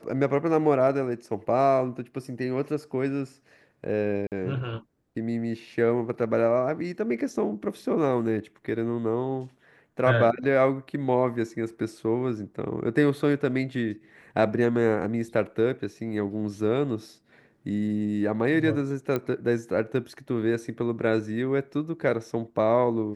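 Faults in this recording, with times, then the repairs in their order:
0:04.27–0:04.32: drop-out 48 ms
0:19.16: click −15 dBFS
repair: click removal
repair the gap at 0:04.27, 48 ms

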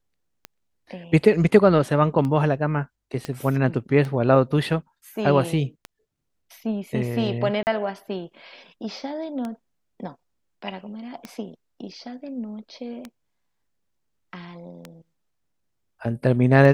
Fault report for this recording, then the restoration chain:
scratch tick 33 1/3 rpm −18 dBFS
0:03.25: click −16 dBFS
0:07.63–0:07.67: drop-out 39 ms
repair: click removal
repair the gap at 0:07.63, 39 ms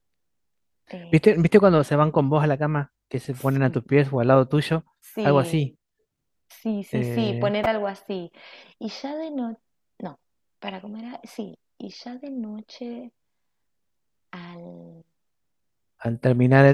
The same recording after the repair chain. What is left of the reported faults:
0:03.25: click

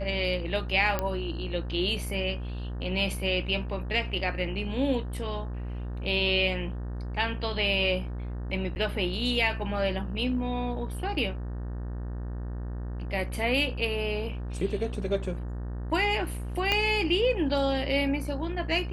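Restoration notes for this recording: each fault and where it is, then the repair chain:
mains buzz 60 Hz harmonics 31 −34 dBFS
0:00.99: click −13 dBFS
0:08.75–0:08.76: drop-out 9.7 ms
0:16.72: click −11 dBFS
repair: click removal
hum removal 60 Hz, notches 31
repair the gap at 0:08.75, 9.7 ms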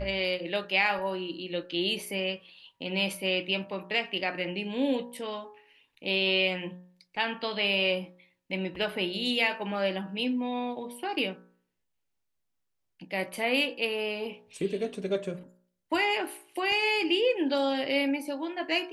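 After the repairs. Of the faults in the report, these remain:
0:16.72: click

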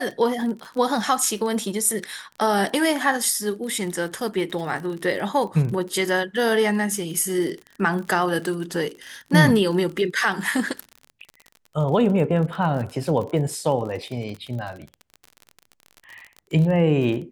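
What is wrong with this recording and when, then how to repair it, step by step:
surface crackle 43 per second −30 dBFS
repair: click removal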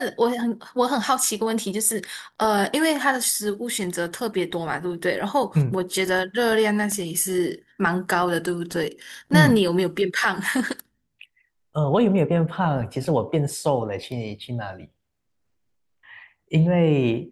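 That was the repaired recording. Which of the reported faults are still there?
none of them is left

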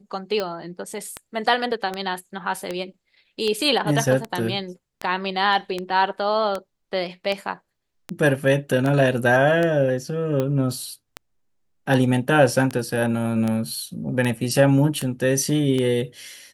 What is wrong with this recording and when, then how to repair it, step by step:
scratch tick 78 rpm −12 dBFS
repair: click removal

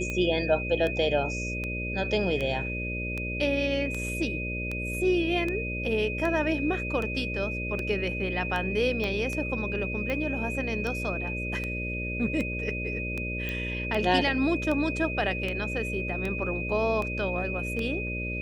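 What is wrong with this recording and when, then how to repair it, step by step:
mains buzz 60 Hz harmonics 10 −34 dBFS
scratch tick 78 rpm −19 dBFS
whistle 2,500 Hz −33 dBFS
0:09.04: click −19 dBFS
0:13.49: click −19 dBFS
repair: click removal
hum removal 60 Hz, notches 10
notch filter 2,500 Hz, Q 30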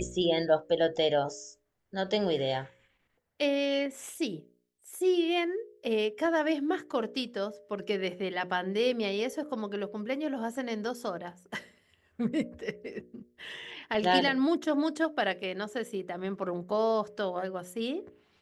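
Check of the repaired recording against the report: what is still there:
0:09.04: click

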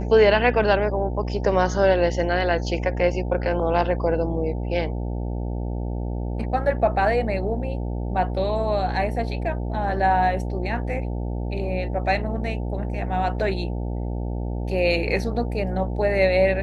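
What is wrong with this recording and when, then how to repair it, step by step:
mains buzz 60 Hz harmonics 15 −27 dBFS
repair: hum removal 60 Hz, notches 15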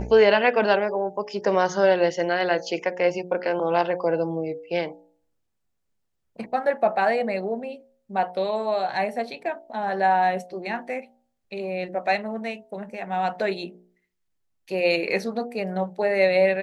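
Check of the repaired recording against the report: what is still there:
none of them is left

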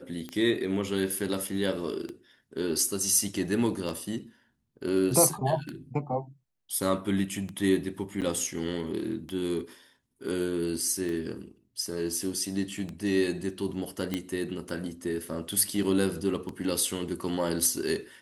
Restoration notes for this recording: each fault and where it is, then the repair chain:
scratch tick 33 1/3 rpm −23 dBFS
0:08.21–0:08.22: drop-out 8.2 ms
0:14.14: click −15 dBFS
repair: click removal
repair the gap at 0:08.21, 8.2 ms

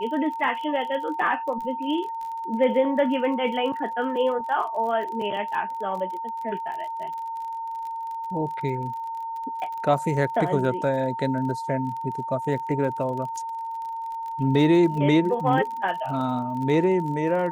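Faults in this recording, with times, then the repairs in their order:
surface crackle 34 per second −33 dBFS
whistle 910 Hz −29 dBFS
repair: click removal
notch filter 910 Hz, Q 30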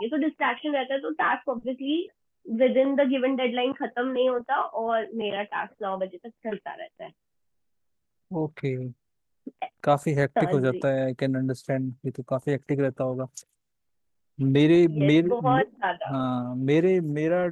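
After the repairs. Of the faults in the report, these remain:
none of them is left

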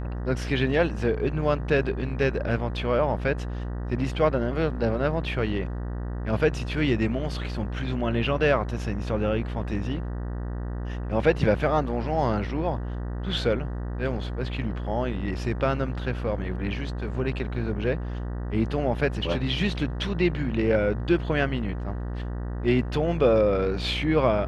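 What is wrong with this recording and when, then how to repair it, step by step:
mains buzz 60 Hz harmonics 32 −31 dBFS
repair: hum removal 60 Hz, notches 32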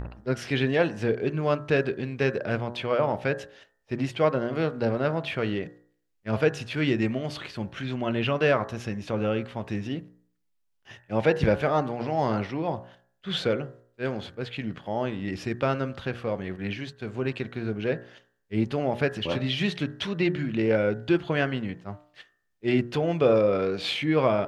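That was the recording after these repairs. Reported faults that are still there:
none of them is left

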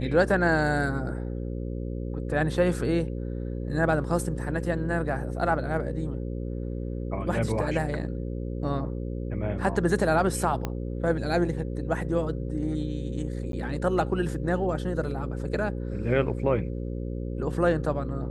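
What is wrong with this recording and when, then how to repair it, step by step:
mains buzz 60 Hz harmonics 9 −32 dBFS
0:10.65: click −15 dBFS
0:13.52–0:13.53: drop-out 12 ms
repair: click removal
hum removal 60 Hz, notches 9
repair the gap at 0:13.52, 12 ms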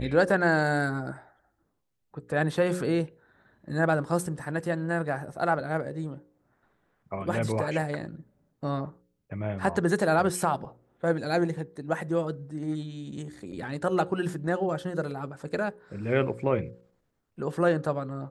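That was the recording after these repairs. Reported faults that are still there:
0:10.65: click

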